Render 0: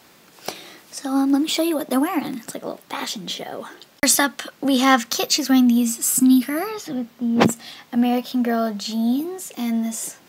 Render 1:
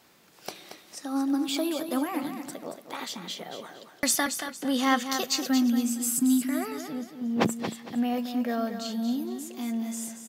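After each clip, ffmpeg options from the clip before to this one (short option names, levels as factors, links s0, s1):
-af "aecho=1:1:229|458|687|916:0.376|0.113|0.0338|0.0101,volume=0.376"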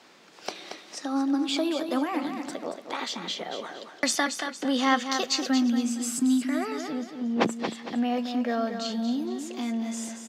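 -filter_complex "[0:a]acrossover=split=190 7300:gain=0.158 1 0.0891[s0][s1][s2];[s0][s1][s2]amix=inputs=3:normalize=0,asplit=2[s3][s4];[s4]acompressor=threshold=0.0141:ratio=6,volume=1.06[s5];[s3][s5]amix=inputs=2:normalize=0"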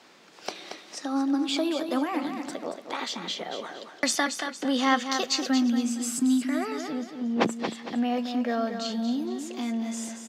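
-af anull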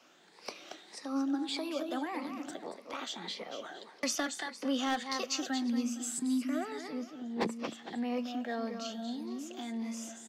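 -filter_complex "[0:a]afftfilt=real='re*pow(10,8/40*sin(2*PI*(0.9*log(max(b,1)*sr/1024/100)/log(2)-(1.7)*(pts-256)/sr)))':imag='im*pow(10,8/40*sin(2*PI*(0.9*log(max(b,1)*sr/1024/100)/log(2)-(1.7)*(pts-256)/sr)))':win_size=1024:overlap=0.75,equalizer=f=65:w=0.59:g=-4.5,acrossover=split=390|580|3700[s0][s1][s2][s3];[s2]volume=15.8,asoftclip=hard,volume=0.0631[s4];[s0][s1][s4][s3]amix=inputs=4:normalize=0,volume=0.398"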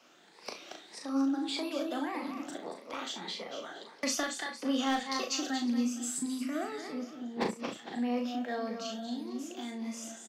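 -af "aecho=1:1:37|67:0.562|0.2"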